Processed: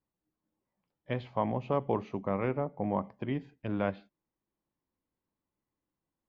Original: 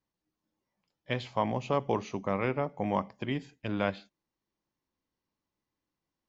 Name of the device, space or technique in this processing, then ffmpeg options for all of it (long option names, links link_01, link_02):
phone in a pocket: -filter_complex "[0:a]lowpass=3900,highshelf=frequency=2000:gain=-11,asettb=1/sr,asplit=3[link_01][link_02][link_03];[link_01]atrim=end=2.574[link_04];[link_02]atrim=start=2.57:end=3.04,asetpts=PTS-STARTPTS,afade=type=in:duration=0.004:curve=qsin,afade=type=out:start_time=0.466:duration=0.004:curve=qsin,highshelf=frequency=2300:gain=-10[link_05];[link_03]atrim=start=3.036[link_06];[link_04][link_05]acrossfade=duration=0.004:curve1=hsin:curve2=qsin[link_07];[link_07][link_06]acrossfade=duration=0.004:curve1=qsin:curve2=hsin"